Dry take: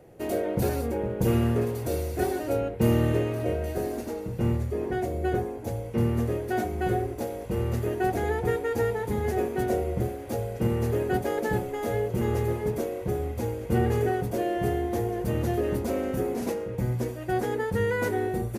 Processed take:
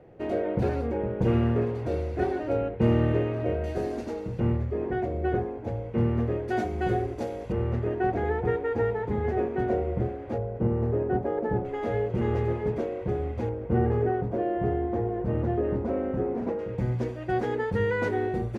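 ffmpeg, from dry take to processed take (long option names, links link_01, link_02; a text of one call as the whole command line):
ffmpeg -i in.wav -af "asetnsamples=nb_out_samples=441:pad=0,asendcmd='3.64 lowpass f 5000;4.4 lowpass f 2400;6.48 lowpass f 5300;7.52 lowpass f 2100;10.38 lowpass f 1100;11.65 lowpass f 2800;13.49 lowpass f 1400;16.59 lowpass f 3800',lowpass=2600" out.wav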